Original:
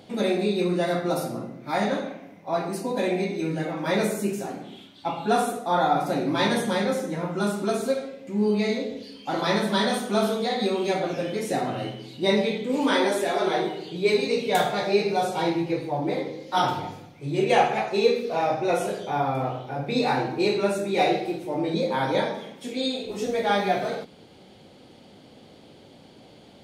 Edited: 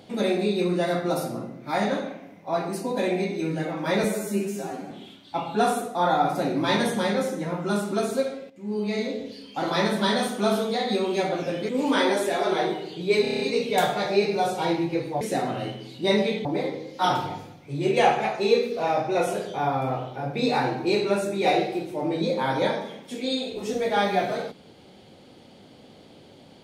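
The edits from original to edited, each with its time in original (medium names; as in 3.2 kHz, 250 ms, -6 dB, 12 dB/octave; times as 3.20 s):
4.04–4.62 s: stretch 1.5×
8.21–8.88 s: fade in, from -14 dB
11.40–12.64 s: move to 15.98 s
14.17 s: stutter 0.03 s, 7 plays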